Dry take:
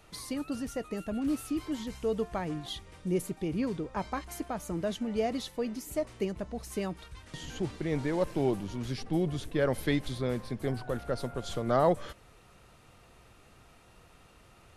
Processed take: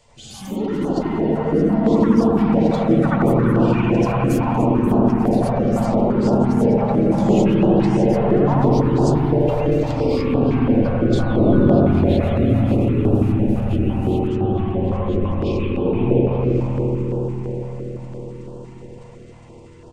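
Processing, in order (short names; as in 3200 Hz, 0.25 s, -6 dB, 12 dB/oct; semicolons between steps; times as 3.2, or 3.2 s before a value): treble ducked by the level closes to 610 Hz, closed at -25 dBFS; bell 2100 Hz -13.5 dB 1.1 oct; echoes that change speed 0.133 s, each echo +6 st, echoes 2; low shelf 170 Hz -6 dB; transient shaper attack -4 dB, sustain +10 dB; comb 6.5 ms, depth 33%; analogue delay 0.272 s, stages 4096, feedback 70%, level -8 dB; spring tank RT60 3.1 s, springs 58 ms, chirp 75 ms, DRR -9 dB; speed mistake 45 rpm record played at 33 rpm; stepped notch 5.9 Hz 310–2100 Hz; gain +6.5 dB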